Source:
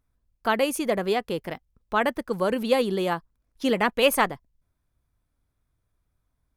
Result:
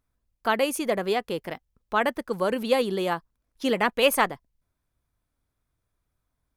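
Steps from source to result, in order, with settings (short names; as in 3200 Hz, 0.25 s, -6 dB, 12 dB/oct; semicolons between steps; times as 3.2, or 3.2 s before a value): low shelf 200 Hz -5 dB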